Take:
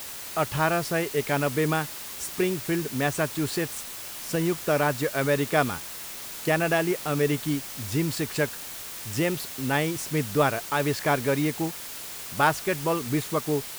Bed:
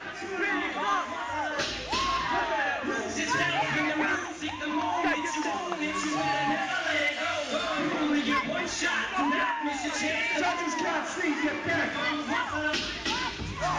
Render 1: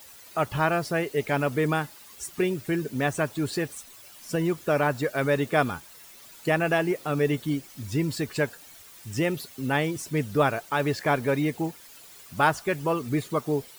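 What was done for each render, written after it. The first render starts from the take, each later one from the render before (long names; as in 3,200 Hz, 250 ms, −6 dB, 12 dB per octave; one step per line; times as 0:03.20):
broadband denoise 13 dB, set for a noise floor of −38 dBFS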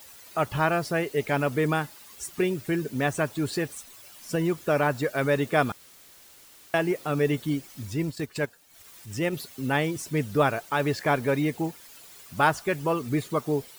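0:05.72–0:06.74: fill with room tone
0:07.85–0:09.33: transient designer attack −5 dB, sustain −11 dB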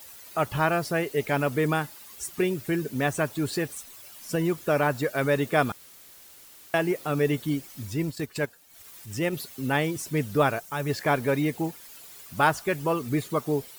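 parametric band 15,000 Hz +4.5 dB 0.83 octaves
0:10.59–0:10.90: gain on a spectral selection 250–5,100 Hz −6 dB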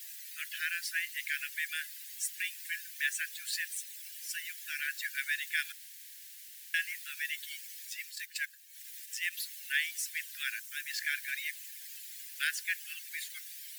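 Butterworth high-pass 1,600 Hz 96 dB per octave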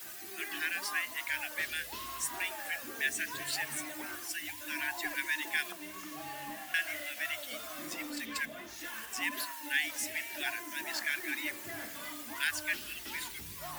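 mix in bed −16 dB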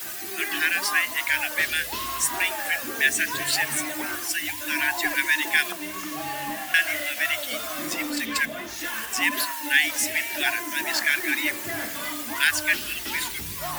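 level +11.5 dB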